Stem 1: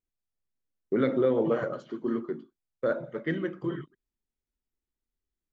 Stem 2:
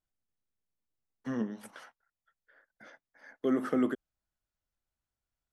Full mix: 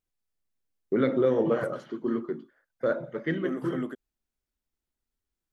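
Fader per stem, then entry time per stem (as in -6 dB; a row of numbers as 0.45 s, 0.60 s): +1.0 dB, -5.0 dB; 0.00 s, 0.00 s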